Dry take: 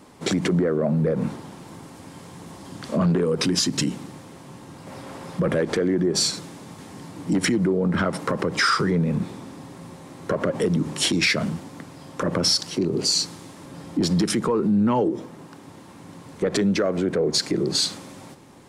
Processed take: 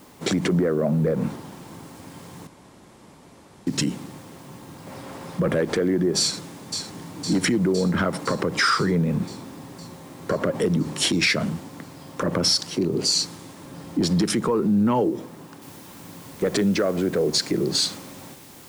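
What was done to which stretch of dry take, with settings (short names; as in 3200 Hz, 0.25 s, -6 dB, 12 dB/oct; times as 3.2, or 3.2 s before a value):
2.47–3.67 room tone
6.21–6.82 echo throw 0.51 s, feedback 70%, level -6 dB
15.62 noise floor step -57 dB -48 dB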